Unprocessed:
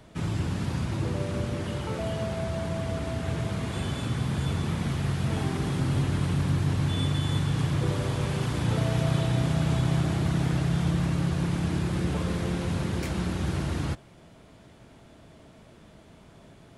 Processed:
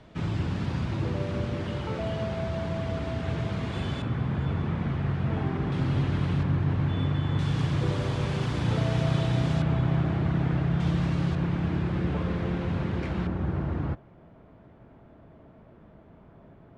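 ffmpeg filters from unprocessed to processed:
-af "asetnsamples=n=441:p=0,asendcmd='4.02 lowpass f 2100;5.72 lowpass f 3600;6.43 lowpass f 2200;7.39 lowpass f 5600;9.62 lowpass f 2300;10.8 lowpass f 4600;11.35 lowpass f 2600;13.27 lowpass f 1400',lowpass=4400"

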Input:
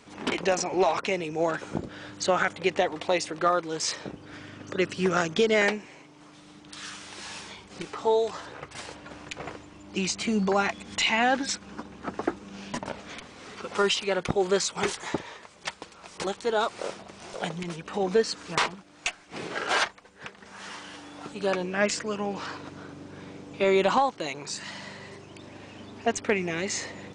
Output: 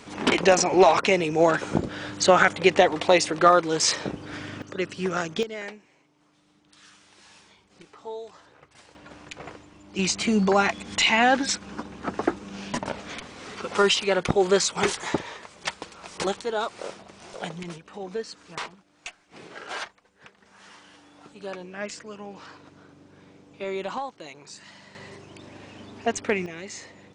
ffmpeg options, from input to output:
-af "asetnsamples=n=441:p=0,asendcmd='4.62 volume volume -2.5dB;5.43 volume volume -13dB;8.95 volume volume -2.5dB;9.99 volume volume 4dB;16.42 volume volume -2dB;17.78 volume volume -9dB;24.95 volume volume 0.5dB;26.46 volume volume -8dB',volume=2.24"

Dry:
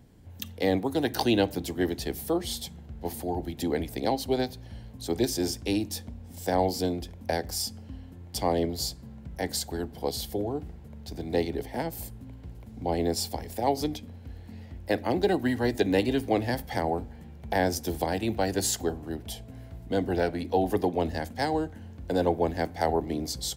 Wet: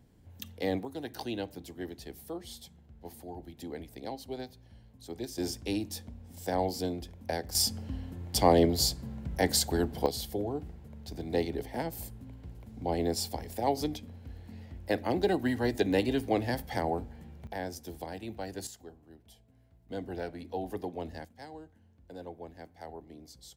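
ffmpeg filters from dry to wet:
-af "asetnsamples=n=441:p=0,asendcmd='0.85 volume volume -12.5dB;5.38 volume volume -5dB;7.55 volume volume 4dB;10.06 volume volume -3dB;17.47 volume volume -12dB;18.67 volume volume -20dB;19.89 volume volume -11dB;21.25 volume volume -19dB',volume=0.501"

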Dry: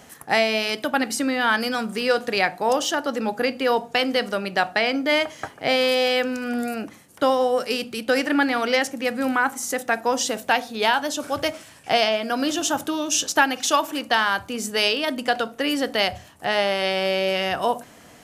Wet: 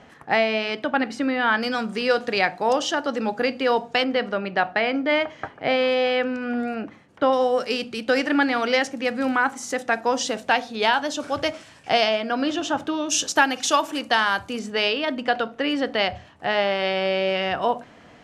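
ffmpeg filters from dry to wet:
-af "asetnsamples=n=441:p=0,asendcmd='1.63 lowpass f 5700;4.04 lowpass f 2700;7.33 lowpass f 6000;12.22 lowpass f 3500;13.09 lowpass f 8800;14.59 lowpass f 3500',lowpass=3000"

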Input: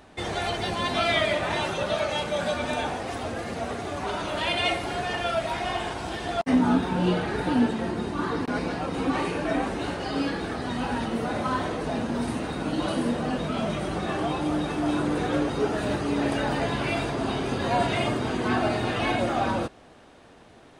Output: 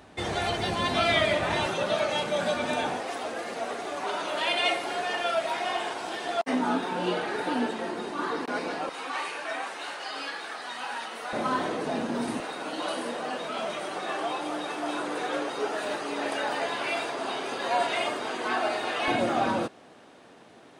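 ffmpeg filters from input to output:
-af "asetnsamples=n=441:p=0,asendcmd='1.66 highpass f 160;3 highpass f 370;8.89 highpass f 920;11.33 highpass f 220;12.4 highpass f 510;19.08 highpass f 170',highpass=53"

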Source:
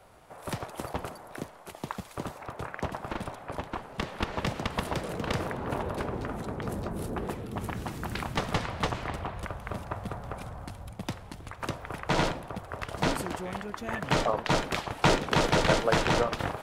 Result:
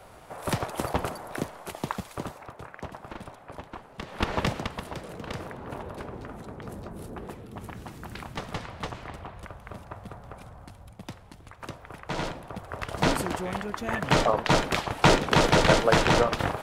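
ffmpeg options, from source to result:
-af "volume=23.7,afade=t=out:st=1.66:d=0.91:silence=0.251189,afade=t=in:st=4.06:d=0.25:silence=0.266073,afade=t=out:st=4.31:d=0.47:silence=0.266073,afade=t=in:st=12.19:d=0.93:silence=0.334965"

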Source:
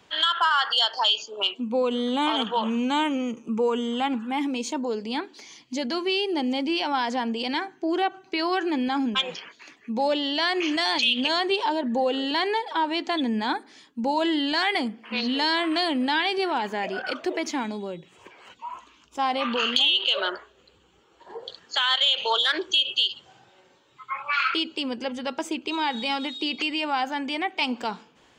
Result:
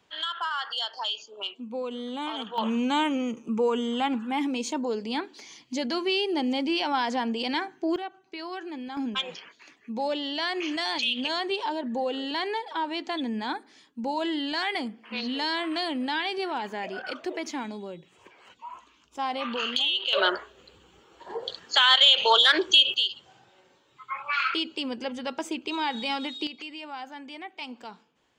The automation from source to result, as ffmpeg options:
-af "asetnsamples=n=441:p=0,asendcmd='2.58 volume volume -1dB;7.96 volume volume -11.5dB;8.97 volume volume -5dB;20.13 volume volume 4dB;22.94 volume volume -2.5dB;26.47 volume volume -12.5dB',volume=0.355"

